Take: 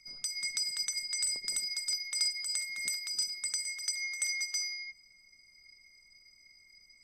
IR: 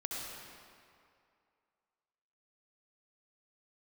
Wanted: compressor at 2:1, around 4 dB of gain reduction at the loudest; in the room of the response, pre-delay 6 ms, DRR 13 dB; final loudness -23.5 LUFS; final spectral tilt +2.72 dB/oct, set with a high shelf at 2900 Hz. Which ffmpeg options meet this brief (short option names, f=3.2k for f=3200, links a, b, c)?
-filter_complex "[0:a]highshelf=f=2.9k:g=6.5,acompressor=threshold=-30dB:ratio=2,asplit=2[a][b];[1:a]atrim=start_sample=2205,adelay=6[c];[b][c]afir=irnorm=-1:irlink=0,volume=-15dB[d];[a][d]amix=inputs=2:normalize=0,volume=6.5dB"